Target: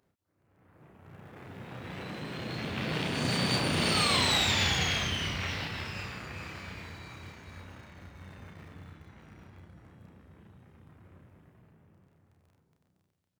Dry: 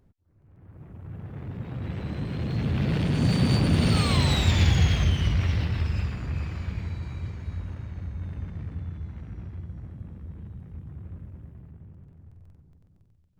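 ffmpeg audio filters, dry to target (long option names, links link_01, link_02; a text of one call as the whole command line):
ffmpeg -i in.wav -filter_complex "[0:a]highpass=frequency=770:poles=1,asplit=2[link_01][link_02];[link_02]aeval=exprs='val(0)*gte(abs(val(0)),0.00501)':channel_layout=same,volume=-11.5dB[link_03];[link_01][link_03]amix=inputs=2:normalize=0,asplit=2[link_04][link_05];[link_05]adelay=32,volume=-3.5dB[link_06];[link_04][link_06]amix=inputs=2:normalize=0" out.wav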